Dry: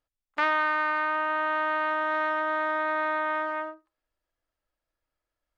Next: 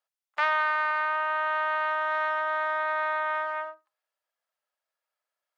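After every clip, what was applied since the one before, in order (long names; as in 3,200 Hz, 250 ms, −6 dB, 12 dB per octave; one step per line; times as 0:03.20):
high-pass filter 570 Hz 24 dB per octave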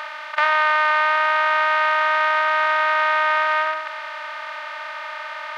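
compressor on every frequency bin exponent 0.2
level +4.5 dB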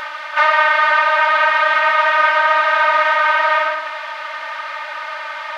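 random phases in long frames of 50 ms
level +4.5 dB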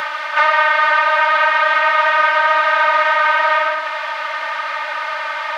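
multiband upward and downward compressor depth 40%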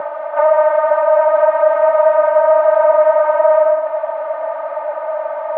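low-pass with resonance 660 Hz, resonance Q 4.9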